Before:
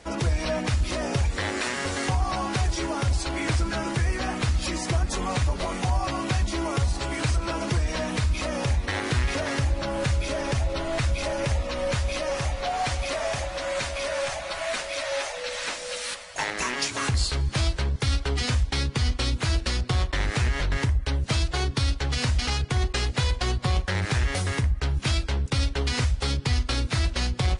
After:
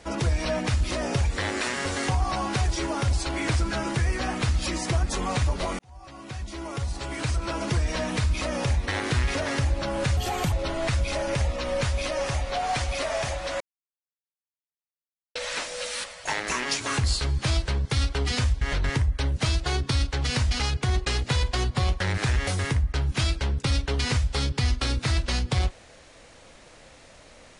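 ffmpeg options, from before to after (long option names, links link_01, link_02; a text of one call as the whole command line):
ffmpeg -i in.wav -filter_complex "[0:a]asplit=7[link_01][link_02][link_03][link_04][link_05][link_06][link_07];[link_01]atrim=end=5.79,asetpts=PTS-STARTPTS,afade=type=out:start_time=5.786:duration=0.004:curve=hsin[link_08];[link_02]atrim=start=5.79:end=10.174,asetpts=PTS-STARTPTS,afade=type=in:duration=2[link_09];[link_03]atrim=start=10.17:end=10.63,asetpts=PTS-STARTPTS,asetrate=57330,aresample=44100[link_10];[link_04]atrim=start=10.626:end=13.71,asetpts=PTS-STARTPTS,afade=type=out:start_time=3.08:duration=0.004:curve=hsin[link_11];[link_05]atrim=start=13.71:end=15.46,asetpts=PTS-STARTPTS,volume=0[link_12];[link_06]atrim=start=15.46:end=18.722,asetpts=PTS-STARTPTS,afade=type=in:duration=0.004:curve=hsin[link_13];[link_07]atrim=start=20.488[link_14];[link_08][link_09]concat=n=2:v=0:a=1[link_15];[link_15][link_10]acrossfade=duration=0.004:curve1=hsin:curve2=hsin[link_16];[link_11][link_12][link_13]concat=n=3:v=0:a=1[link_17];[link_16][link_17]acrossfade=duration=0.004:curve1=hsin:curve2=hsin[link_18];[link_18][link_14]acrossfade=duration=0.004:curve1=hsin:curve2=hsin" out.wav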